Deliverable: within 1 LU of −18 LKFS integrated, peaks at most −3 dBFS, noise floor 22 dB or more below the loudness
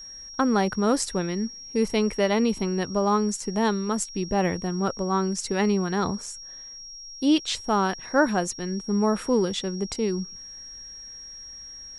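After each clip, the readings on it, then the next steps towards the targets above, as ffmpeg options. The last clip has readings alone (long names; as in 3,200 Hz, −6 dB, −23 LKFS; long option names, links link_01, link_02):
interfering tone 5,600 Hz; level of the tone −39 dBFS; integrated loudness −25.0 LKFS; sample peak −8.0 dBFS; target loudness −18.0 LKFS
→ -af "bandreject=frequency=5600:width=30"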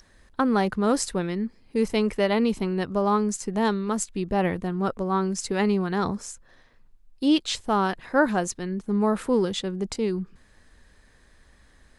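interfering tone none found; integrated loudness −25.5 LKFS; sample peak −8.5 dBFS; target loudness −18.0 LKFS
→ -af "volume=7.5dB,alimiter=limit=-3dB:level=0:latency=1"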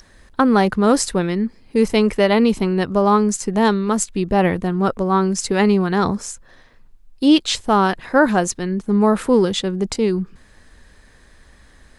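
integrated loudness −18.0 LKFS; sample peak −3.0 dBFS; background noise floor −50 dBFS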